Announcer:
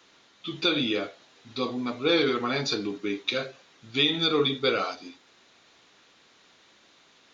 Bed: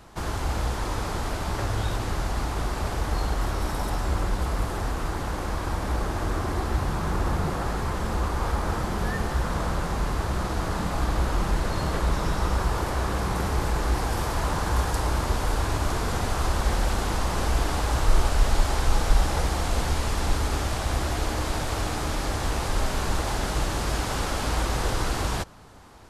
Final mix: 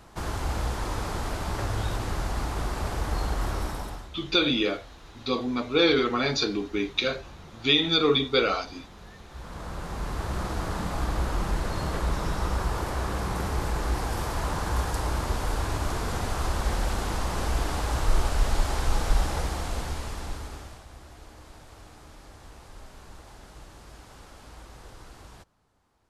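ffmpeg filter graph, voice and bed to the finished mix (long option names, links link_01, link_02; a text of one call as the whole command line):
ffmpeg -i stem1.wav -i stem2.wav -filter_complex "[0:a]adelay=3700,volume=2dB[link_01];[1:a]volume=15.5dB,afade=type=out:start_time=3.57:duration=0.53:silence=0.11885,afade=type=in:start_time=9.27:duration=1.13:silence=0.133352,afade=type=out:start_time=19.2:duration=1.66:silence=0.125893[link_02];[link_01][link_02]amix=inputs=2:normalize=0" out.wav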